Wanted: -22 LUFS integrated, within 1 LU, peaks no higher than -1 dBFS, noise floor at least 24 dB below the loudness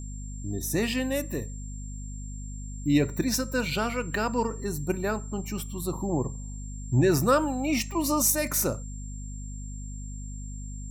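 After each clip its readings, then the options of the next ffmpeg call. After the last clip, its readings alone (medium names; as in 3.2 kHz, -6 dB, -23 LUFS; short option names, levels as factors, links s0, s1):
hum 50 Hz; highest harmonic 250 Hz; hum level -35 dBFS; steady tone 7.4 kHz; tone level -46 dBFS; loudness -27.5 LUFS; peak level -10.5 dBFS; loudness target -22.0 LUFS
-> -af "bandreject=f=50:t=h:w=6,bandreject=f=100:t=h:w=6,bandreject=f=150:t=h:w=6,bandreject=f=200:t=h:w=6,bandreject=f=250:t=h:w=6"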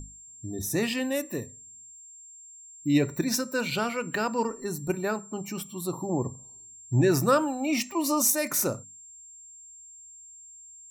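hum not found; steady tone 7.4 kHz; tone level -46 dBFS
-> -af "bandreject=f=7400:w=30"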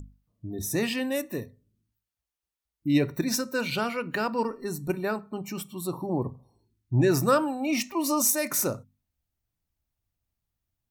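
steady tone not found; loudness -27.5 LUFS; peak level -10.5 dBFS; loudness target -22.0 LUFS
-> -af "volume=1.88"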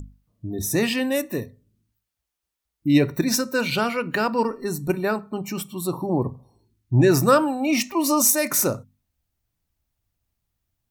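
loudness -22.0 LUFS; peak level -5.0 dBFS; noise floor -83 dBFS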